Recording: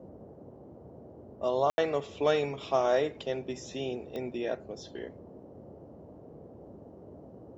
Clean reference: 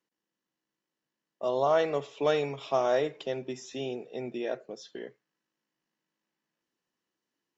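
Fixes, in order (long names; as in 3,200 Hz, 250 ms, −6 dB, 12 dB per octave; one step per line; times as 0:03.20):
click removal
ambience match 0:01.70–0:01.78
noise reduction from a noise print 30 dB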